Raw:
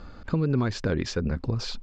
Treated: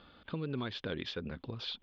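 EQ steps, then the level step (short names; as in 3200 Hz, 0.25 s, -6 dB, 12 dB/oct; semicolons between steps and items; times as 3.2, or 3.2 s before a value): HPF 200 Hz 6 dB/oct; ladder low-pass 3600 Hz, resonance 75%; +2.0 dB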